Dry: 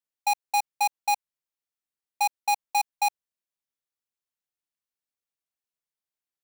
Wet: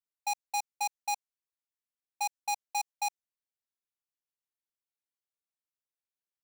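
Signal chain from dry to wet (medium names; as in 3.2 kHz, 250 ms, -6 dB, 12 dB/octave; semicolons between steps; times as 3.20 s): dynamic bell 6.4 kHz, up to +7 dB, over -46 dBFS, Q 1.4; trim -8.5 dB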